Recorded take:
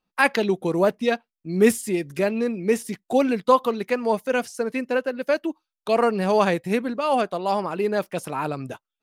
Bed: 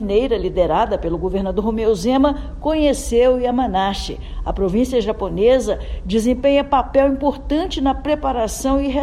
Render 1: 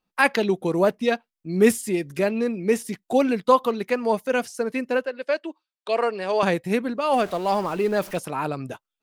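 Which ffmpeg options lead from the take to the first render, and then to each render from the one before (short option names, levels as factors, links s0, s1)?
-filter_complex "[0:a]asettb=1/sr,asplit=3[s0][s1][s2];[s0]atrim=end=5.054[s3];[s1]atrim=start=5.05:end=6.43,asetpts=PTS-STARTPTS,afade=t=in:d=0.004:c=qsin,afade=t=out:st=1.376:d=0.004:c=qsin,highpass=440,equalizer=f=810:t=q:w=4:g=-5,equalizer=f=1300:t=q:w=4:g=-4,equalizer=f=6300:t=q:w=4:g=-9,lowpass=f=7900:w=0.5412,lowpass=f=7900:w=1.3066[s4];[s2]atrim=start=6.426[s5];[s3][s4]acrossfade=d=0.004:c1=hsin:c2=qsin[s6];[s6][s5]acrossfade=d=0.004:c1=qsin:c2=hsin,asettb=1/sr,asplit=3[s7][s8][s9];[s7]atrim=end=7.134[s10];[s8]atrim=start=7.13:end=8.18,asetpts=PTS-STARTPTS,afade=t=in:d=0.004:c=qsin,afade=t=out:st=1.046:d=0.004:c=qsin,aeval=exprs='val(0)+0.5*0.0168*sgn(val(0))':c=same[s11];[s9]atrim=start=8.176[s12];[s10][s11]acrossfade=d=0.004:c1=hsin:c2=qsin[s13];[s13][s12]acrossfade=d=0.004:c1=qsin:c2=hsin"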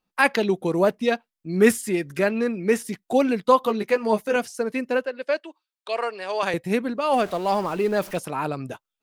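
-filter_complex "[0:a]asettb=1/sr,asplit=3[s0][s1][s2];[s0]atrim=end=1.534[s3];[s1]atrim=start=1.53:end=2.86,asetpts=PTS-STARTPTS,afade=t=in:d=0.004:c=qsin,afade=t=out:st=1.326:d=0.004:c=qsin,equalizer=f=1500:t=o:w=0.77:g=7[s4];[s2]atrim=start=2.856[s5];[s3][s4]acrossfade=d=0.004:c1=hsin:c2=qsin[s6];[s6][s5]acrossfade=d=0.004:c1=qsin:c2=hsin,asettb=1/sr,asplit=3[s7][s8][s9];[s7]atrim=end=3.634[s10];[s8]atrim=start=3.63:end=4.36,asetpts=PTS-STARTPTS,afade=t=in:d=0.004:c=qsin,afade=t=out:st=0.726:d=0.004:c=qsin,asplit=2[s11][s12];[s12]adelay=14,volume=0.562[s13];[s11][s13]amix=inputs=2:normalize=0,atrim=end_sample=32193[s14];[s9]atrim=start=4.356[s15];[s10][s14]acrossfade=d=0.004:c1=hsin:c2=qsin[s16];[s16][s15]acrossfade=d=0.004:c1=qsin:c2=hsin,asettb=1/sr,asplit=3[s17][s18][s19];[s17]atrim=end=5.404[s20];[s18]atrim=start=5.4:end=6.54,asetpts=PTS-STARTPTS,afade=t=in:d=0.004:c=qsin,afade=t=out:st=1.136:d=0.004:c=qsin,highpass=f=760:p=1[s21];[s19]atrim=start=6.536[s22];[s20][s21]acrossfade=d=0.004:c1=hsin:c2=qsin[s23];[s23][s22]acrossfade=d=0.004:c1=qsin:c2=hsin"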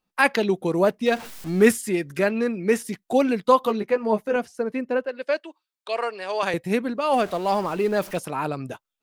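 -filter_complex "[0:a]asettb=1/sr,asplit=3[s0][s1][s2];[s0]atrim=end=1.064[s3];[s1]atrim=start=1.06:end=1.68,asetpts=PTS-STARTPTS,afade=t=in:d=0.004:c=qsin,afade=t=out:st=0.616:d=0.004:c=qsin,aeval=exprs='val(0)+0.5*0.0237*sgn(val(0))':c=same[s4];[s2]atrim=start=1.676[s5];[s3][s4]acrossfade=d=0.004:c1=hsin:c2=qsin[s6];[s6][s5]acrossfade=d=0.004:c1=qsin:c2=hsin,asettb=1/sr,asplit=3[s7][s8][s9];[s7]atrim=end=3.804[s10];[s8]atrim=start=3.8:end=5.09,asetpts=PTS-STARTPTS,afade=t=in:d=0.004:c=qsin,afade=t=out:st=1.286:d=0.004:c=qsin,highshelf=f=2600:g=-12[s11];[s9]atrim=start=5.086[s12];[s10][s11]acrossfade=d=0.004:c1=hsin:c2=qsin[s13];[s13][s12]acrossfade=d=0.004:c1=qsin:c2=hsin"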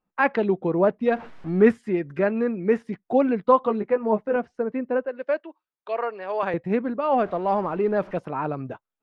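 -af "lowpass=1600"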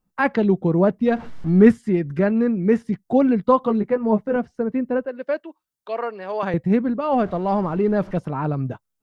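-af "bass=f=250:g=12,treble=f=4000:g=9,bandreject=f=2500:w=18"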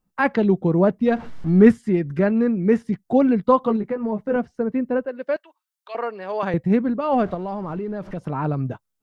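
-filter_complex "[0:a]asettb=1/sr,asplit=3[s0][s1][s2];[s0]atrim=end=3.764[s3];[s1]atrim=start=3.76:end=4.24,asetpts=PTS-STARTPTS,afade=t=in:d=0.004:c=qsin,afade=t=out:st=0.476:d=0.004:c=qsin,acompressor=threshold=0.1:ratio=6:attack=3.2:release=140:knee=1:detection=peak[s4];[s2]atrim=start=4.236[s5];[s3][s4]acrossfade=d=0.004:c1=hsin:c2=qsin[s6];[s6][s5]acrossfade=d=0.004:c1=qsin:c2=hsin,asettb=1/sr,asplit=3[s7][s8][s9];[s7]atrim=end=5.364[s10];[s8]atrim=start=5.36:end=5.95,asetpts=PTS-STARTPTS,afade=t=in:d=0.004:c=qsin,afade=t=out:st=0.586:d=0.004:c=qsin,highpass=990[s11];[s9]atrim=start=5.946[s12];[s10][s11]acrossfade=d=0.004:c1=hsin:c2=qsin[s13];[s13][s12]acrossfade=d=0.004:c1=qsin:c2=hsin,asettb=1/sr,asplit=3[s14][s15][s16];[s14]atrim=end=7.344[s17];[s15]atrim=start=7.34:end=8.23,asetpts=PTS-STARTPTS,afade=t=in:d=0.004:c=qsin,afade=t=out:st=0.886:d=0.004:c=qsin,acompressor=threshold=0.0562:ratio=6:attack=3.2:release=140:knee=1:detection=peak[s18];[s16]atrim=start=8.226[s19];[s17][s18]acrossfade=d=0.004:c1=hsin:c2=qsin[s20];[s20][s19]acrossfade=d=0.004:c1=qsin:c2=hsin"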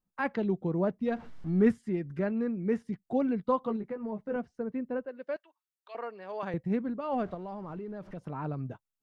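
-af "volume=0.266"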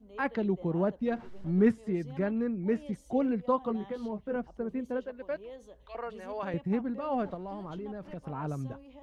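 -filter_complex "[1:a]volume=0.0237[s0];[0:a][s0]amix=inputs=2:normalize=0"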